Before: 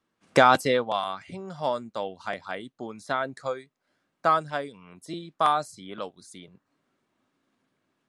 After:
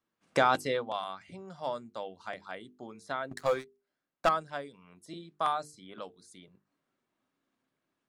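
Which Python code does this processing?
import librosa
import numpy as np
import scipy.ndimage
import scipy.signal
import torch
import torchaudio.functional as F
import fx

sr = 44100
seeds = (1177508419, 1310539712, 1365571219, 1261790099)

y = fx.leveller(x, sr, passes=3, at=(3.31, 4.29))
y = fx.hum_notches(y, sr, base_hz=50, count=9)
y = y * librosa.db_to_amplitude(-7.5)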